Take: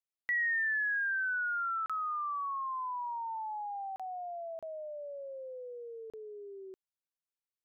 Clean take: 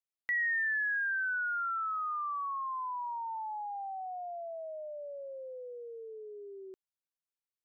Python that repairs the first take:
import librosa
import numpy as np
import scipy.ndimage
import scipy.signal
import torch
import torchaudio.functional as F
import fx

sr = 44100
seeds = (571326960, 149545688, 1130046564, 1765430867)

y = fx.fix_interpolate(x, sr, at_s=(1.86, 3.96, 4.59, 6.1), length_ms=36.0)